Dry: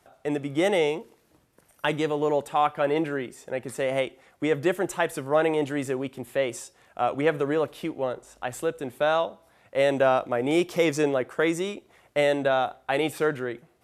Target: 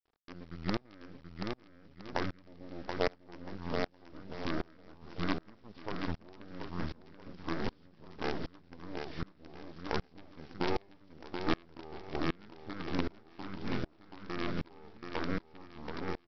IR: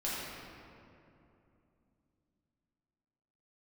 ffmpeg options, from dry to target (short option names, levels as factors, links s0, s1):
-filter_complex "[0:a]acrossover=split=5500[s0][s1];[s1]acompressor=threshold=0.00282:ratio=4:attack=1:release=60[s2];[s0][s2]amix=inputs=2:normalize=0,equalizer=f=69:w=1:g=-4,acompressor=threshold=0.0282:ratio=3,asetrate=37485,aresample=44100,aresample=16000,acrusher=bits=5:dc=4:mix=0:aa=0.000001,aresample=44100,asetrate=31183,aresample=44100,atempo=1.41421,aecho=1:1:730|1314|1781|2155|2454:0.631|0.398|0.251|0.158|0.1,aeval=exprs='val(0)*pow(10,-31*if(lt(mod(-1.3*n/s,1),2*abs(-1.3)/1000),1-mod(-1.3*n/s,1)/(2*abs(-1.3)/1000),(mod(-1.3*n/s,1)-2*abs(-1.3)/1000)/(1-2*abs(-1.3)/1000))/20)':c=same,volume=1.41"